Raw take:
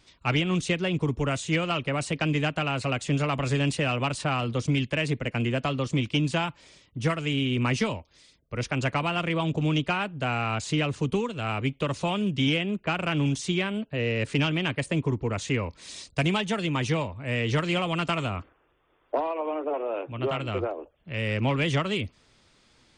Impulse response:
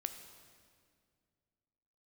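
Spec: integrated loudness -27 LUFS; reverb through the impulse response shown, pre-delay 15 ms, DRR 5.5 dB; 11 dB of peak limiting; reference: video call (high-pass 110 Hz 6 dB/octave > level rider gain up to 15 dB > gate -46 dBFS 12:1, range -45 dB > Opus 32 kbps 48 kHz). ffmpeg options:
-filter_complex "[0:a]alimiter=level_in=1.06:limit=0.0631:level=0:latency=1,volume=0.944,asplit=2[s0][s1];[1:a]atrim=start_sample=2205,adelay=15[s2];[s1][s2]afir=irnorm=-1:irlink=0,volume=0.596[s3];[s0][s3]amix=inputs=2:normalize=0,highpass=f=110:p=1,dynaudnorm=m=5.62,agate=range=0.00562:threshold=0.00501:ratio=12,volume=0.708" -ar 48000 -c:a libopus -b:a 32k

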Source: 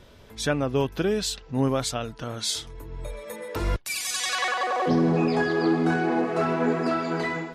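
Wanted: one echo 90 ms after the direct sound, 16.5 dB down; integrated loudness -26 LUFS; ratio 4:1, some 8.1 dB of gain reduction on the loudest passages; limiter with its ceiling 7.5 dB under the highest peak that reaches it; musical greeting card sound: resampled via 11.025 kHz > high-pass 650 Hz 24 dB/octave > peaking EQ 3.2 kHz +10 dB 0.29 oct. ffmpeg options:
-af "acompressor=threshold=0.0398:ratio=4,alimiter=limit=0.0631:level=0:latency=1,aecho=1:1:90:0.15,aresample=11025,aresample=44100,highpass=f=650:w=0.5412,highpass=f=650:w=1.3066,equalizer=f=3200:t=o:w=0.29:g=10,volume=3.16"

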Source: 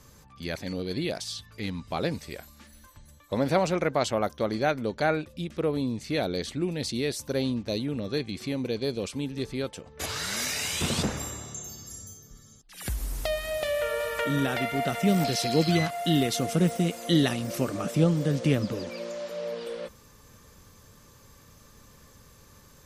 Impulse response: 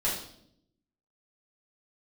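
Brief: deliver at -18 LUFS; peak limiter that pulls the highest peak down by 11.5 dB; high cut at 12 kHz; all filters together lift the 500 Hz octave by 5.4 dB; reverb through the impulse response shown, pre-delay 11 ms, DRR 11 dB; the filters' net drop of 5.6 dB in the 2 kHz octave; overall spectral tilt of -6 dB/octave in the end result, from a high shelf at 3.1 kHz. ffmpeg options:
-filter_complex "[0:a]lowpass=12000,equalizer=f=500:t=o:g=7,equalizer=f=2000:t=o:g=-6,highshelf=f=3100:g=-4.5,alimiter=limit=0.141:level=0:latency=1,asplit=2[s0][s1];[1:a]atrim=start_sample=2205,adelay=11[s2];[s1][s2]afir=irnorm=-1:irlink=0,volume=0.106[s3];[s0][s3]amix=inputs=2:normalize=0,volume=3.16"

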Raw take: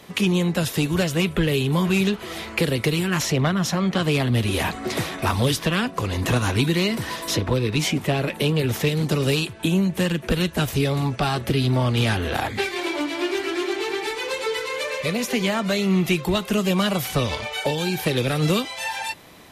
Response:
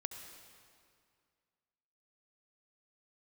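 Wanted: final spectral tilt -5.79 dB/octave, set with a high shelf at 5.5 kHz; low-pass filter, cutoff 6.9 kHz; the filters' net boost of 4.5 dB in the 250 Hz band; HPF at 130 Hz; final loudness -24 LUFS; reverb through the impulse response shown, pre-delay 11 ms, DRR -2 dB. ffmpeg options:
-filter_complex "[0:a]highpass=130,lowpass=6900,equalizer=f=250:t=o:g=7.5,highshelf=f=5500:g=-8.5,asplit=2[s0][s1];[1:a]atrim=start_sample=2205,adelay=11[s2];[s1][s2]afir=irnorm=-1:irlink=0,volume=1.5[s3];[s0][s3]amix=inputs=2:normalize=0,volume=0.422"

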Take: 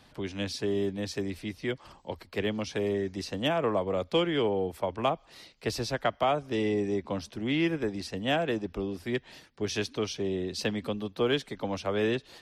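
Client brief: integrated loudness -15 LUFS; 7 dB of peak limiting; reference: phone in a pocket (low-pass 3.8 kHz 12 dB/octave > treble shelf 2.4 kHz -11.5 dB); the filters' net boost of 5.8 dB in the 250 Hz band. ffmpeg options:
-af "equalizer=f=250:t=o:g=8,alimiter=limit=0.112:level=0:latency=1,lowpass=3800,highshelf=f=2400:g=-11.5,volume=5.96"

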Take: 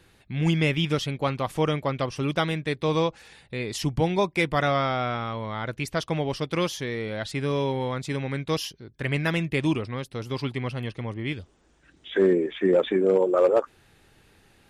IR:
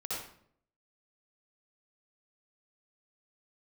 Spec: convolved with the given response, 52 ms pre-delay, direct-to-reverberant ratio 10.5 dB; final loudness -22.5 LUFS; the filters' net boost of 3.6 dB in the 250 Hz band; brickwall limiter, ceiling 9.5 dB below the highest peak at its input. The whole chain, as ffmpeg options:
-filter_complex "[0:a]equalizer=f=250:t=o:g=5.5,alimiter=limit=0.133:level=0:latency=1,asplit=2[s0][s1];[1:a]atrim=start_sample=2205,adelay=52[s2];[s1][s2]afir=irnorm=-1:irlink=0,volume=0.211[s3];[s0][s3]amix=inputs=2:normalize=0,volume=1.88"

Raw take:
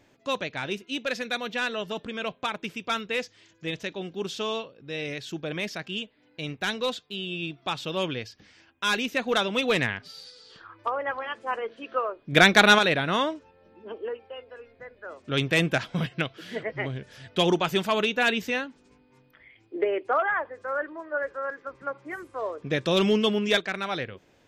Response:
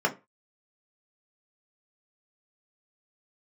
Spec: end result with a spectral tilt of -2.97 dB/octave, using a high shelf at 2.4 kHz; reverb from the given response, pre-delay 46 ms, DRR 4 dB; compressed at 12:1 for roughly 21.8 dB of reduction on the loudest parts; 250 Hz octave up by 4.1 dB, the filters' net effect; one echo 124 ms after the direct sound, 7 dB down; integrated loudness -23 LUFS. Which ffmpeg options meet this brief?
-filter_complex "[0:a]equalizer=f=250:t=o:g=5.5,highshelf=f=2400:g=5,acompressor=threshold=0.0251:ratio=12,aecho=1:1:124:0.447,asplit=2[s0][s1];[1:a]atrim=start_sample=2205,adelay=46[s2];[s1][s2]afir=irnorm=-1:irlink=0,volume=0.15[s3];[s0][s3]amix=inputs=2:normalize=0,volume=3.98"

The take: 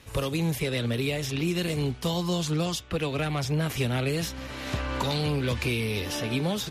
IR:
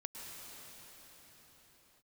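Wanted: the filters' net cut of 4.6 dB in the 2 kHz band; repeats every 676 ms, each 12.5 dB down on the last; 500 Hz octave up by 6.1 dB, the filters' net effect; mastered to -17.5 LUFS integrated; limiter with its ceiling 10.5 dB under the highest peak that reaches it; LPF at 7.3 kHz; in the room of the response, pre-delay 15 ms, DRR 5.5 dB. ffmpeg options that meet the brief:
-filter_complex "[0:a]lowpass=7300,equalizer=f=500:t=o:g=7.5,equalizer=f=2000:t=o:g=-6.5,alimiter=limit=0.0708:level=0:latency=1,aecho=1:1:676|1352|2028:0.237|0.0569|0.0137,asplit=2[s0][s1];[1:a]atrim=start_sample=2205,adelay=15[s2];[s1][s2]afir=irnorm=-1:irlink=0,volume=0.596[s3];[s0][s3]amix=inputs=2:normalize=0,volume=4.22"

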